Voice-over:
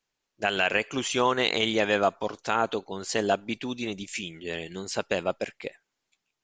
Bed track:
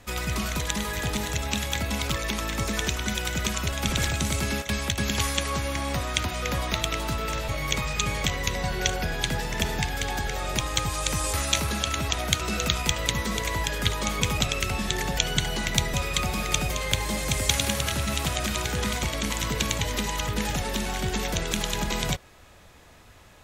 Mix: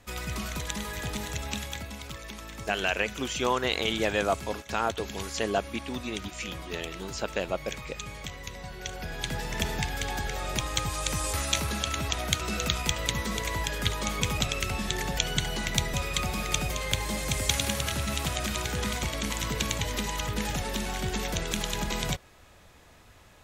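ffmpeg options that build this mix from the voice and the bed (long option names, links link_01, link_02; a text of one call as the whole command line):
ffmpeg -i stem1.wav -i stem2.wav -filter_complex "[0:a]adelay=2250,volume=-3dB[link_01];[1:a]volume=4dB,afade=type=out:start_time=1.52:duration=0.43:silence=0.446684,afade=type=in:start_time=8.83:duration=0.72:silence=0.334965[link_02];[link_01][link_02]amix=inputs=2:normalize=0" out.wav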